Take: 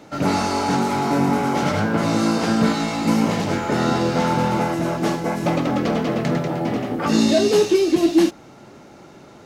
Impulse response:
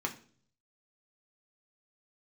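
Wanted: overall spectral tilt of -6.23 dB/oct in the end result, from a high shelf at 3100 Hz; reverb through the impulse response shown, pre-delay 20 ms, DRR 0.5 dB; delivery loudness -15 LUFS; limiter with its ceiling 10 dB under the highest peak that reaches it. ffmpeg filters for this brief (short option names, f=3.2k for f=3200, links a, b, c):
-filter_complex "[0:a]highshelf=f=3.1k:g=-6.5,alimiter=limit=-15.5dB:level=0:latency=1,asplit=2[a][b];[1:a]atrim=start_sample=2205,adelay=20[c];[b][c]afir=irnorm=-1:irlink=0,volume=-5dB[d];[a][d]amix=inputs=2:normalize=0,volume=6dB"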